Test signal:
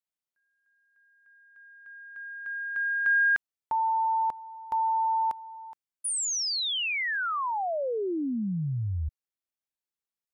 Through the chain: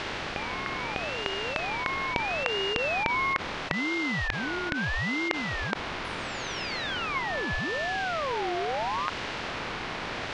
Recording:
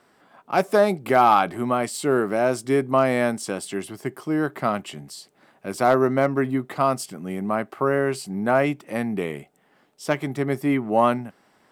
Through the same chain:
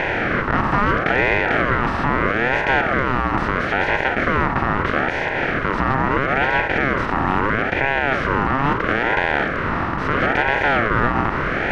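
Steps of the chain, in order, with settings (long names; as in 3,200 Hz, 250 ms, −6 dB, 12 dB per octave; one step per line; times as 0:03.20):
compressor on every frequency bin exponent 0.2
brickwall limiter −3 dBFS
high-frequency loss of the air 290 metres
ring modulator whose carrier an LFO sweeps 880 Hz, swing 40%, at 0.76 Hz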